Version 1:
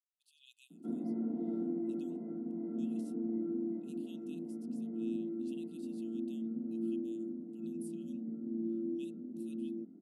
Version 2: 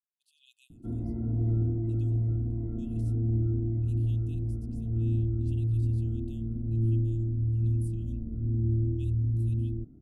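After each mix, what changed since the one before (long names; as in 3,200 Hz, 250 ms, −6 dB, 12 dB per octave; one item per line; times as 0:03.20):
master: remove Butterworth high-pass 170 Hz 96 dB per octave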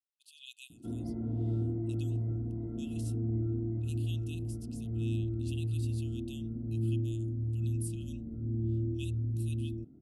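speech +12.0 dB
background: add high-pass filter 190 Hz 6 dB per octave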